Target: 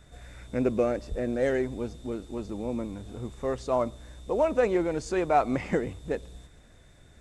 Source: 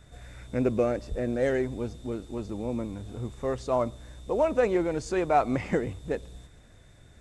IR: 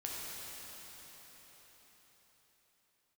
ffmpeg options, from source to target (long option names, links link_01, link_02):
-af "equalizer=frequency=110:width_type=o:width=0.5:gain=-5"